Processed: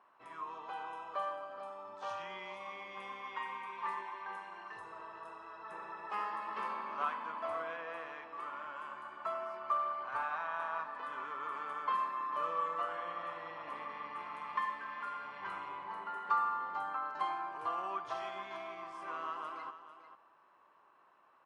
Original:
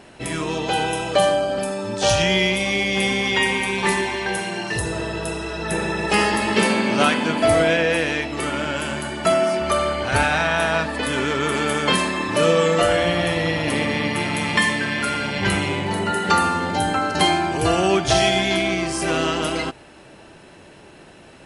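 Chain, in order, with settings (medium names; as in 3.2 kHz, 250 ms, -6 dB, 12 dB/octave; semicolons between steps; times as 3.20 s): band-pass filter 1.1 kHz, Q 8.7; on a send: delay 446 ms -12.5 dB; on the sum: trim -4.5 dB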